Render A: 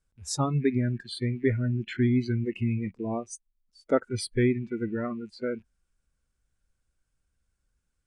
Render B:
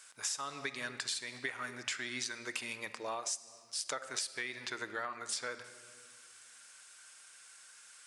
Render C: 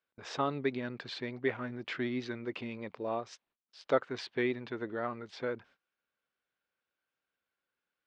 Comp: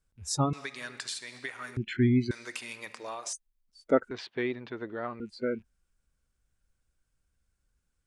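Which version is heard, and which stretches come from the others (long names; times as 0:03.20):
A
0:00.53–0:01.77: punch in from B
0:02.31–0:03.33: punch in from B
0:04.11–0:05.20: punch in from C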